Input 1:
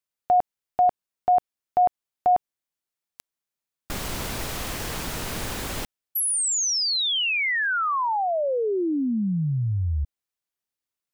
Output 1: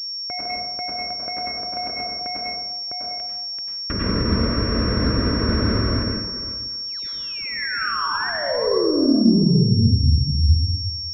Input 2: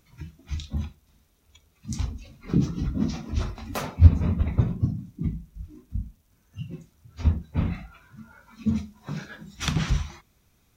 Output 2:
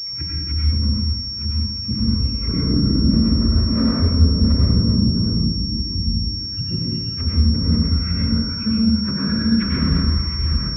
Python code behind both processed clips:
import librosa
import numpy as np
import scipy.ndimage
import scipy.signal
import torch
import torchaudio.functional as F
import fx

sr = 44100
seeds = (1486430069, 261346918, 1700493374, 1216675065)

p1 = fx.reverse_delay(x, sr, ms=377, wet_db=-6.0)
p2 = scipy.signal.sosfilt(scipy.signal.butter(2, 50.0, 'highpass', fs=sr, output='sos'), p1)
p3 = fx.peak_eq(p2, sr, hz=150.0, db=-11.5, octaves=0.24)
p4 = fx.over_compress(p3, sr, threshold_db=-30.0, ratio=-0.5)
p5 = p3 + F.gain(torch.from_numpy(p4), 0.0).numpy()
p6 = 10.0 ** (-16.0 / 20.0) * np.tanh(p5 / 10.0 ** (-16.0 / 20.0))
p7 = fx.fixed_phaser(p6, sr, hz=1900.0, stages=4)
p8 = fx.env_lowpass_down(p7, sr, base_hz=1000.0, full_db=-25.5)
p9 = fx.rev_plate(p8, sr, seeds[0], rt60_s=1.1, hf_ratio=0.55, predelay_ms=85, drr_db=-4.0)
p10 = fx.pwm(p9, sr, carrier_hz=5500.0)
y = F.gain(torch.from_numpy(p10), 3.0).numpy()